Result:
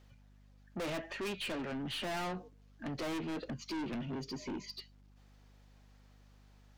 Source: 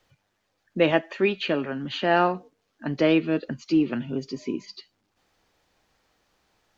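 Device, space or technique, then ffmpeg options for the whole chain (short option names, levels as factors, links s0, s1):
valve amplifier with mains hum: -af "aeval=exprs='(tanh(50.1*val(0)+0.15)-tanh(0.15))/50.1':c=same,aeval=exprs='val(0)+0.00126*(sin(2*PI*50*n/s)+sin(2*PI*2*50*n/s)/2+sin(2*PI*3*50*n/s)/3+sin(2*PI*4*50*n/s)/4+sin(2*PI*5*50*n/s)/5)':c=same,volume=0.794"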